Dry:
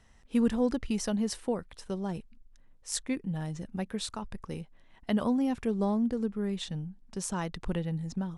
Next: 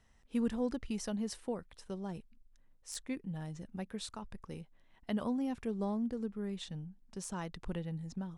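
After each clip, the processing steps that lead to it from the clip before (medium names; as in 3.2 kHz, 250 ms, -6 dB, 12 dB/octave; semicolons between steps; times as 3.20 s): de-esser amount 55%; trim -7 dB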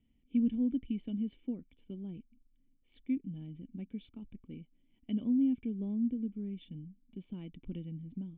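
cascade formant filter i; trim +7.5 dB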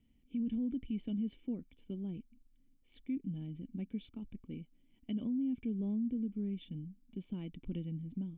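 peak limiter -32 dBFS, peak gain reduction 10.5 dB; trim +2 dB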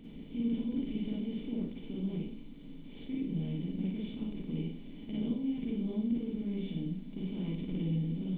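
spectral levelling over time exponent 0.4; Schroeder reverb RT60 0.54 s, DRR -6 dB; trim -6.5 dB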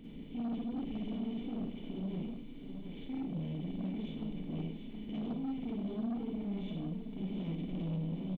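saturation -33 dBFS, distortion -12 dB; delay 721 ms -8.5 dB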